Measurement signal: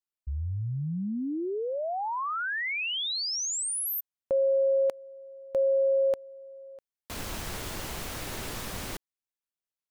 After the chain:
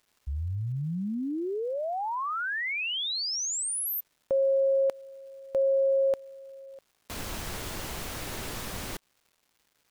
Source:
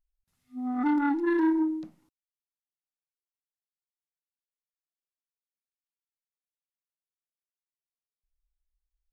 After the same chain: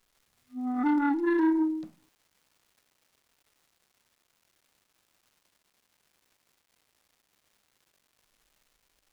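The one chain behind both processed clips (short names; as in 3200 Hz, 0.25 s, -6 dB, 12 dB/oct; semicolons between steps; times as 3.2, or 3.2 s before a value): crackle 590/s -56 dBFS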